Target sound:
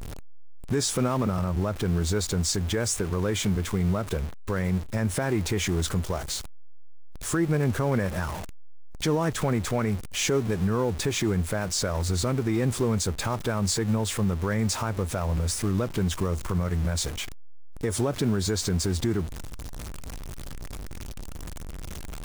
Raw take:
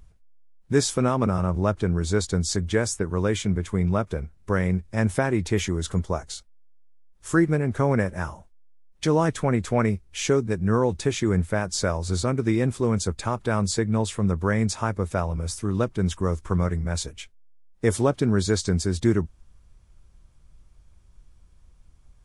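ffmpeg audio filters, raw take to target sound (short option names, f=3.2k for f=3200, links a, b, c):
-af "aeval=exprs='val(0)+0.5*0.0299*sgn(val(0))':c=same,acrusher=bits=9:dc=4:mix=0:aa=0.000001,alimiter=limit=-16dB:level=0:latency=1:release=107"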